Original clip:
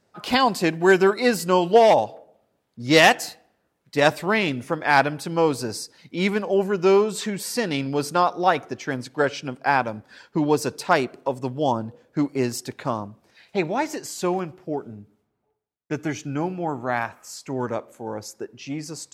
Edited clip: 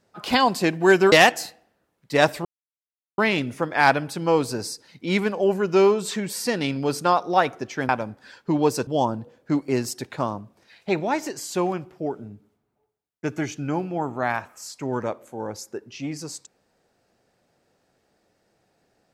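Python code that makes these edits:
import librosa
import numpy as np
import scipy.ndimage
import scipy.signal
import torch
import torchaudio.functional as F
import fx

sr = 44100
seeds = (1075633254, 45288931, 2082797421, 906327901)

y = fx.edit(x, sr, fx.cut(start_s=1.12, length_s=1.83),
    fx.insert_silence(at_s=4.28, length_s=0.73),
    fx.cut(start_s=8.99, length_s=0.77),
    fx.cut(start_s=10.74, length_s=0.8), tone=tone)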